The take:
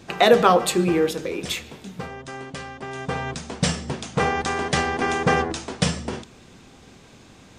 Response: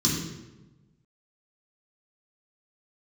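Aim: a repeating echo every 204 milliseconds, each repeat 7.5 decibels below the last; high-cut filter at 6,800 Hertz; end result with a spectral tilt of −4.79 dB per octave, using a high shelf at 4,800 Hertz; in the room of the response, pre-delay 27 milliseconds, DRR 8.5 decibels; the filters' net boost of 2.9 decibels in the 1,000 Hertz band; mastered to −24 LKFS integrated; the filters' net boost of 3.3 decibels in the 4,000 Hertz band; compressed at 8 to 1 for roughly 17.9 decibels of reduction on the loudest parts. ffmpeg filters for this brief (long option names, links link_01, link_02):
-filter_complex "[0:a]lowpass=6800,equalizer=frequency=1000:width_type=o:gain=4,equalizer=frequency=4000:width_type=o:gain=6.5,highshelf=frequency=4800:gain=-5,acompressor=threshold=-27dB:ratio=8,aecho=1:1:204|408|612|816|1020:0.422|0.177|0.0744|0.0312|0.0131,asplit=2[link_01][link_02];[1:a]atrim=start_sample=2205,adelay=27[link_03];[link_02][link_03]afir=irnorm=-1:irlink=0,volume=-18.5dB[link_04];[link_01][link_04]amix=inputs=2:normalize=0,volume=4dB"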